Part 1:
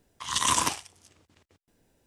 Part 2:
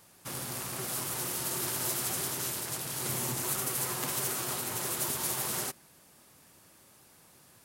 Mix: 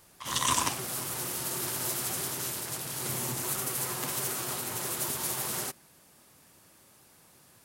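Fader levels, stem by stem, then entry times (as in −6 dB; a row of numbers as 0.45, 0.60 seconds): −3.0, 0.0 decibels; 0.00, 0.00 seconds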